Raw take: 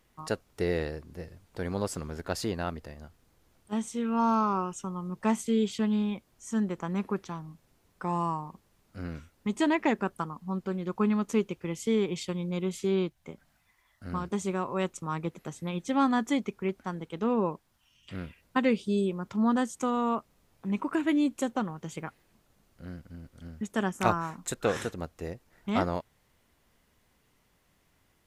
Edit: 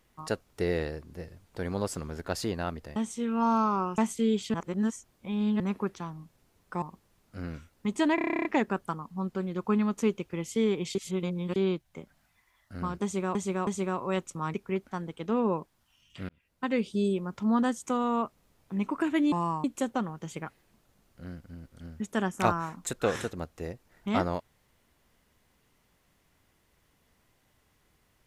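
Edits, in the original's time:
2.96–3.73 cut
4.75–5.27 cut
5.83–6.89 reverse
8.11–8.43 move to 21.25
9.76 stutter 0.03 s, 11 plays
12.26–12.87 reverse
14.34–14.66 loop, 3 plays
15.21–16.47 cut
18.22–18.87 fade in

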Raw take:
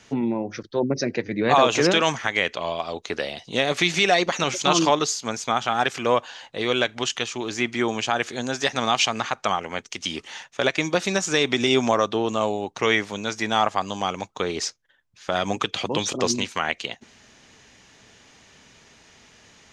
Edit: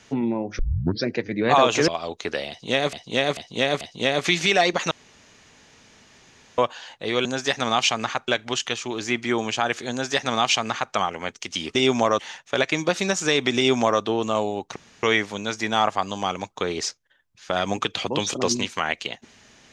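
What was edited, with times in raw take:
0.59 tape start 0.46 s
1.88–2.73 cut
3.34–3.78 loop, 4 plays
4.44–6.11 room tone
8.41–9.44 copy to 6.78
11.63–12.07 copy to 10.25
12.82 insert room tone 0.27 s

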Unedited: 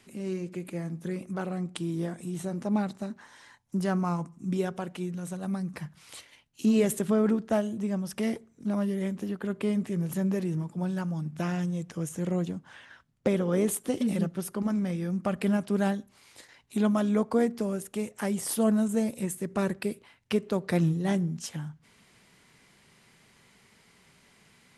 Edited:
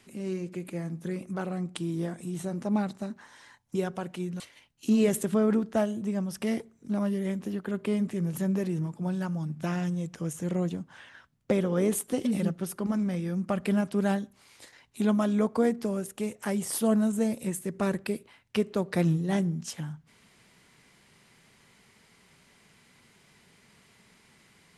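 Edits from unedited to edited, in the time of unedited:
3.75–4.56 cut
5.21–6.16 cut

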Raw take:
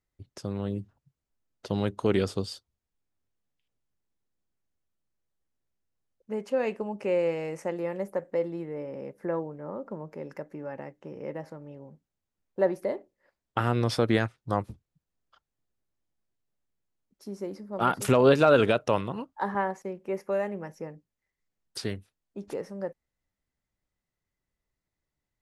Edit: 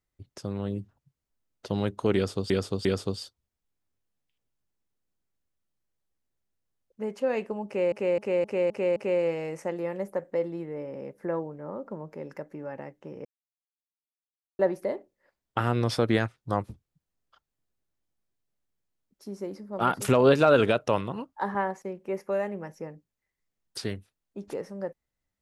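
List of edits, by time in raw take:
2.15–2.5 loop, 3 plays
6.96–7.22 loop, 6 plays
11.25–12.59 mute

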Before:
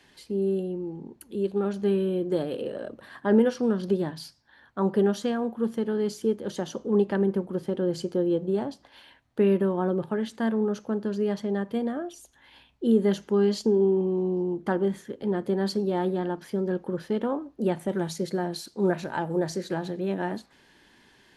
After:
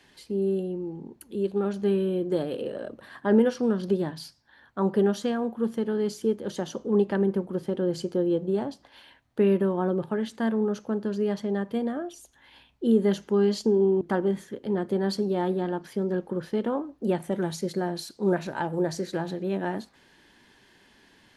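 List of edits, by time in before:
14.01–14.58 cut

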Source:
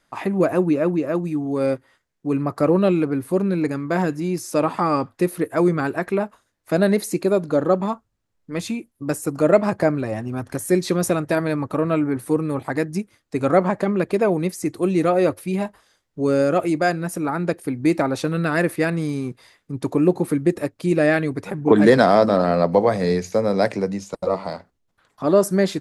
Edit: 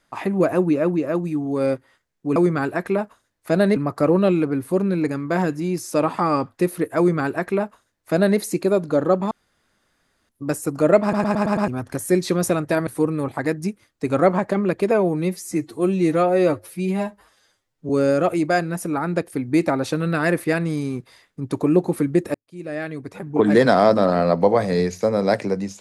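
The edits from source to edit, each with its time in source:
5.58–6.98 copy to 2.36
7.91–8.89 room tone
9.62 stutter in place 0.11 s, 6 plays
11.47–12.18 cut
14.22–16.21 stretch 1.5×
20.66–22.18 fade in

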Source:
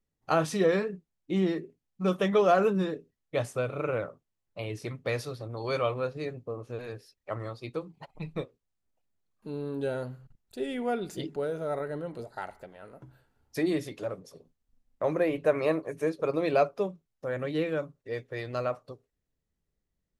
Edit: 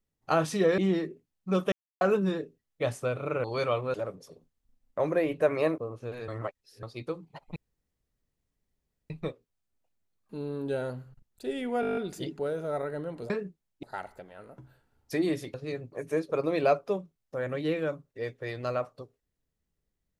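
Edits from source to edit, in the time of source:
0.78–1.31 move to 12.27
2.25–2.54 mute
3.97–5.57 cut
6.07–6.45 swap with 13.98–15.82
6.95–7.5 reverse
8.23 insert room tone 1.54 s
10.94 stutter 0.02 s, 9 plays

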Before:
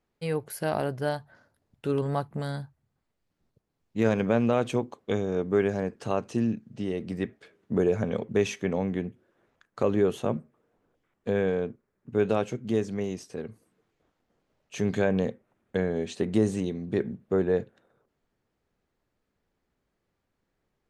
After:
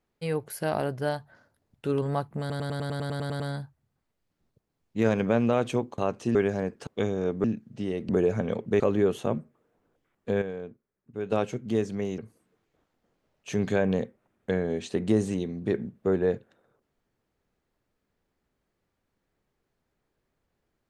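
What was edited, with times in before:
2.4 stutter 0.10 s, 11 plays
4.98–5.55 swap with 6.07–6.44
7.09–7.72 cut
8.43–9.79 cut
11.41–12.31 gain -9 dB
13.17–13.44 cut

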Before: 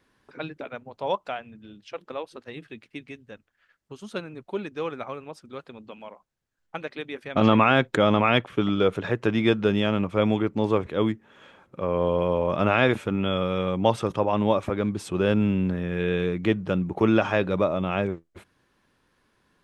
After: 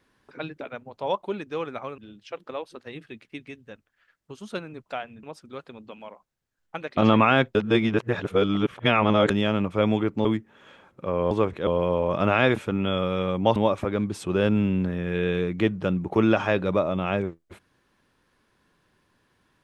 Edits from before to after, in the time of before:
1.22–1.59 swap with 4.47–5.23
6.97–7.36 cut
7.94–9.69 reverse
10.64–11 move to 12.06
13.95–14.41 cut

